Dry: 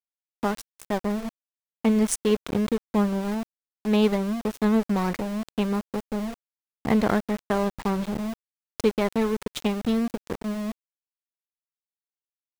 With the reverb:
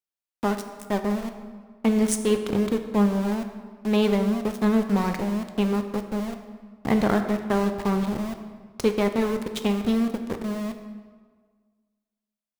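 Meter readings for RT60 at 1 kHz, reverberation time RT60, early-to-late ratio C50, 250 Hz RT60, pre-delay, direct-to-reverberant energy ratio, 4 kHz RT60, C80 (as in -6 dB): 1.6 s, 1.6 s, 8.5 dB, 1.6 s, 5 ms, 6.5 dB, 1.1 s, 10.0 dB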